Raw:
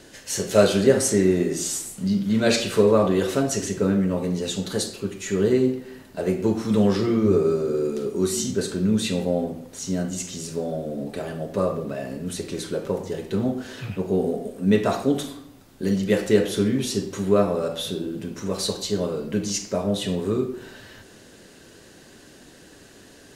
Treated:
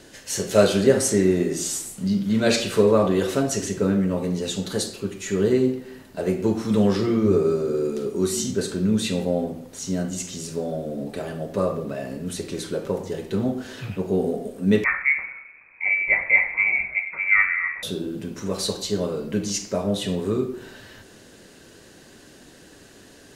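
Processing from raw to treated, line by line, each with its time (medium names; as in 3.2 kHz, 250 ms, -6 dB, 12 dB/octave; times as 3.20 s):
14.84–17.83 s: frequency inversion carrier 2.5 kHz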